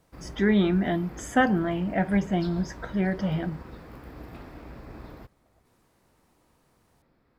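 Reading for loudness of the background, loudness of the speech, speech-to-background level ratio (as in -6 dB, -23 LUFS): -44.5 LUFS, -26.0 LUFS, 18.5 dB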